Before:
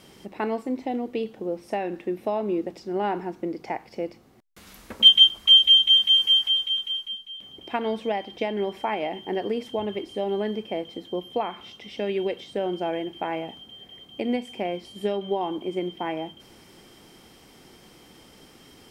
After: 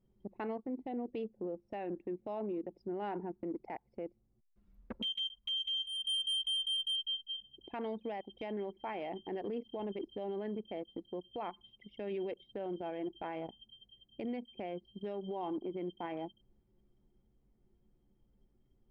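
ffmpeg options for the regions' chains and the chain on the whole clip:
-filter_complex "[0:a]asettb=1/sr,asplit=3[a][b][c];[a]atrim=end=5.834[d];[b]atrim=start=5.83:end=6.96,asetpts=PTS-STARTPTS,afade=t=in:d=0.004:c=qsin,afade=t=out:st=1.126:d=0.004:c=qsin,acompressor=threshold=-28dB:ratio=6:attack=3.2:release=140:knee=1:detection=peak,asoftclip=type=hard:threshold=-30dB[e];[c]atrim=start=6.956[f];[d][e]acrossfade=d=0.004:c1=hsin:c2=qsin[g];[g][f]acrossfade=d=0.004:c1=qsin:c2=hsin,anlmdn=25.1,acompressor=threshold=-31dB:ratio=5,alimiter=level_in=7.5dB:limit=-24dB:level=0:latency=1:release=17,volume=-7.5dB"

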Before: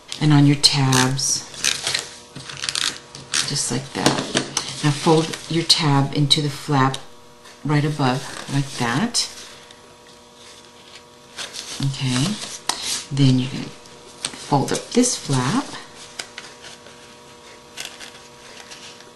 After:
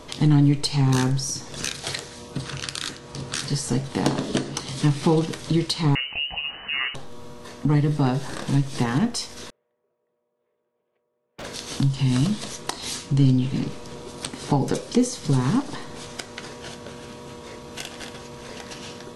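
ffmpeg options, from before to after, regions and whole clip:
-filter_complex "[0:a]asettb=1/sr,asplit=3[a][b][c];[a]atrim=end=5.954[d];[b]atrim=start=5.95:end=6.95,asetpts=PTS-STARTPTS,afade=t=in:d=0.004:c=qsin,afade=t=out:st=0.996:d=0.004:c=qsin,aemphasis=mode=reproduction:type=50fm,lowpass=f=2.6k:t=q:w=0.5098,lowpass=f=2.6k:t=q:w=0.6013,lowpass=f=2.6k:t=q:w=0.9,lowpass=f=2.6k:t=q:w=2.563,afreqshift=-3000[e];[c]atrim=start=6.946[f];[d][e]acrossfade=d=0.004:c1=hsin:c2=qsin[g];[g][f]acrossfade=d=0.004:c1=qsin:c2=hsin,asettb=1/sr,asplit=3[h][i][j];[h]atrim=end=9.504[k];[i]atrim=start=9.5:end=11.45,asetpts=PTS-STARTPTS,afade=t=in:d=0.004:c=qsin,afade=t=out:st=1.946:d=0.004:c=qsin,agate=range=-37dB:threshold=-35dB:ratio=16:release=100:detection=peak,highpass=180,equalizer=f=280:t=q:w=4:g=-8,equalizer=f=420:t=q:w=4:g=10,equalizer=f=600:t=q:w=4:g=8,lowpass=f=2.4k:w=0.5412,lowpass=f=2.4k:w=1.3066,aeval=exprs='0.0224*(abs(mod(val(0)/0.0224+3,4)-2)-1)':c=same[l];[j]atrim=start=11.446[m];[k][l]acrossfade=d=0.004:c1=hsin:c2=qsin[n];[n][m]acrossfade=d=0.004:c1=qsin:c2=hsin,acompressor=threshold=-31dB:ratio=2,tiltshelf=f=640:g=5.5,volume=4dB"

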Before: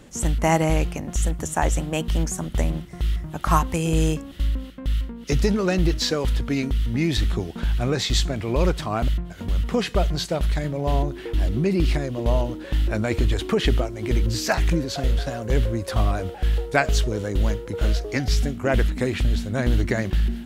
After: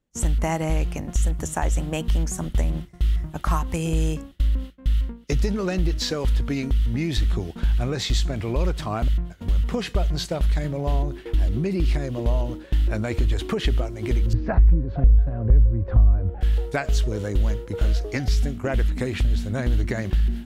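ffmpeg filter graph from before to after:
-filter_complex "[0:a]asettb=1/sr,asplit=3[a][b][c];[a]atrim=end=14.334[d];[b]atrim=start=14.33:end=16.41,asetpts=PTS-STARTPTS,afade=t=in:d=0.004:c=qsin,afade=t=out:st=2.076:d=0.004:c=qsin,lowpass=1.8k,aemphasis=mode=reproduction:type=riaa[e];[c]atrim=start=16.406[f];[d][e]acrossfade=d=0.004:c1=hsin:c2=qsin[g];[g][f]acrossfade=d=0.004:c1=qsin:c2=hsin,agate=range=-33dB:threshold=-28dB:ratio=3:detection=peak,acompressor=threshold=-23dB:ratio=3,lowshelf=f=64:g=9.5"

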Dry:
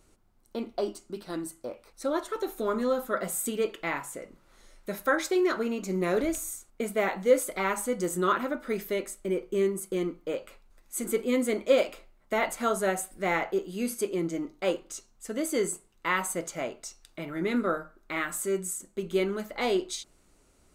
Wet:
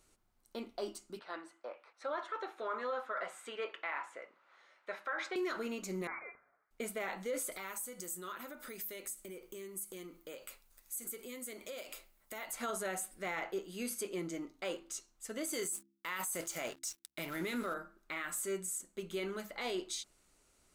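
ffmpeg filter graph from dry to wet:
-filter_complex "[0:a]asettb=1/sr,asplit=3[a][b][c];[a]atrim=end=1.194[d];[b]atrim=start=1.19:end=5.36,asetpts=PTS-STARTPTS,afade=t=in:d=0.004:c=qsin,afade=t=out:st=4.166:d=0.004:c=qsin,acontrast=52,highpass=690,lowpass=2.1k[e];[c]atrim=start=5.356[f];[d][e]acrossfade=d=0.004:c1=hsin:c2=qsin[g];[g][f]acrossfade=d=0.004:c1=qsin:c2=hsin,asettb=1/sr,asplit=3[h][i][j];[h]atrim=end=6.074[k];[i]atrim=start=6.07:end=6.71,asetpts=PTS-STARTPTS,afade=t=in:d=0.004:c=qsin,afade=t=out:st=0.636:d=0.004:c=qsin,highpass=1.3k,lowpass=f=2.3k:t=q:w=0.5098,lowpass=f=2.3k:t=q:w=0.6013,lowpass=f=2.3k:t=q:w=0.9,lowpass=f=2.3k:t=q:w=2.563,afreqshift=-2700[l];[j]atrim=start=6.706[m];[k][l]acrossfade=d=0.004:c1=hsin:c2=qsin[n];[n][m]acrossfade=d=0.004:c1=qsin:c2=hsin,asettb=1/sr,asplit=3[o][p][q];[o]atrim=end=7.524[r];[p]atrim=start=7.52:end=12.53,asetpts=PTS-STARTPTS,afade=t=in:d=0.004:c=qsin,afade=t=out:st=5.006:d=0.004:c=qsin,aemphasis=mode=production:type=50fm,acompressor=threshold=-37dB:ratio=4:attack=3.2:release=140:knee=1:detection=peak[s];[q]atrim=start=12.526[t];[r][s]acrossfade=d=0.004:c1=hsin:c2=qsin[u];[u][t]acrossfade=d=0.004:c1=qsin:c2=hsin,asettb=1/sr,asplit=3[v][w][x];[v]atrim=end=15.534[y];[w]atrim=start=15.53:end=17.74,asetpts=PTS-STARTPTS,afade=t=in:d=0.004:c=qsin,afade=t=out:st=2.206:d=0.004:c=qsin,aemphasis=mode=production:type=50kf,acontrast=24,aeval=exprs='sgn(val(0))*max(abs(val(0))-0.00596,0)':c=same[z];[x]atrim=start=17.736[aa];[y][z]acrossfade=d=0.004:c1=hsin:c2=qsin[ab];[ab][aa]acrossfade=d=0.004:c1=qsin:c2=hsin,tiltshelf=f=880:g=-4,bandreject=f=67.19:t=h:w=4,bandreject=f=134.38:t=h:w=4,bandreject=f=201.57:t=h:w=4,bandreject=f=268.76:t=h:w=4,bandreject=f=335.95:t=h:w=4,alimiter=limit=-23dB:level=0:latency=1:release=20,volume=-6.5dB"

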